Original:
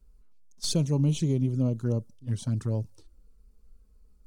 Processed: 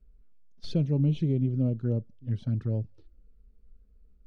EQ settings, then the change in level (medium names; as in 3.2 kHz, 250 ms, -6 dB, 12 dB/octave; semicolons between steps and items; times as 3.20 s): distance through air 330 m; peaking EQ 1 kHz -11.5 dB 0.57 oct; peaking EQ 7.3 kHz -3.5 dB 0.51 oct; 0.0 dB